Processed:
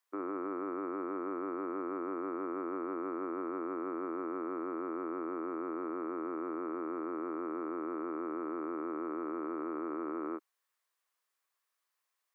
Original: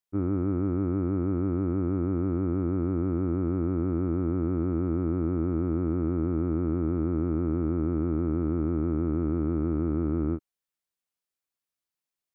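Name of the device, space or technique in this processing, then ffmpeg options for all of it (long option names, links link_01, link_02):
laptop speaker: -af "highpass=frequency=380:width=0.5412,highpass=frequency=380:width=1.3066,equalizer=frequency=1100:width_type=o:width=0.45:gain=10,equalizer=frequency=1800:width_type=o:width=0.57:gain=6,alimiter=level_in=10.5dB:limit=-24dB:level=0:latency=1:release=69,volume=-10.5dB,volume=4dB"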